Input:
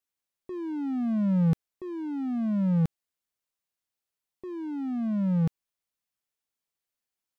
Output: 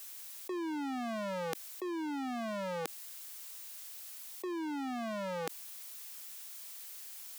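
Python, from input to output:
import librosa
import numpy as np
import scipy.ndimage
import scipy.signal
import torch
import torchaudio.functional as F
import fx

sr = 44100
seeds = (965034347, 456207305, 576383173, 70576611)

y = scipy.signal.sosfilt(scipy.signal.butter(4, 330.0, 'highpass', fs=sr, output='sos'), x)
y = fx.tilt_eq(y, sr, slope=3.0)
y = fx.env_flatten(y, sr, amount_pct=70)
y = y * librosa.db_to_amplitude(3.5)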